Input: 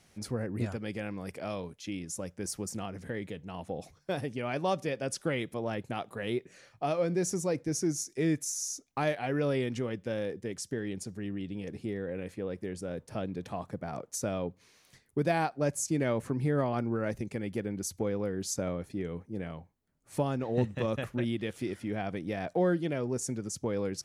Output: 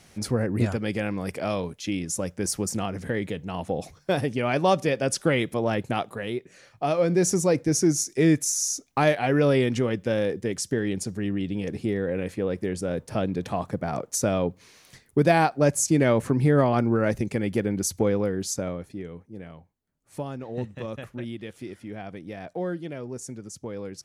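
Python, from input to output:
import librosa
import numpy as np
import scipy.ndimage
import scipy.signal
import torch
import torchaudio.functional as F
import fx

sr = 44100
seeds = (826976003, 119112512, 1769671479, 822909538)

y = fx.gain(x, sr, db=fx.line((5.99, 9.0), (6.33, 1.5), (7.28, 9.0), (18.1, 9.0), (19.22, -3.0)))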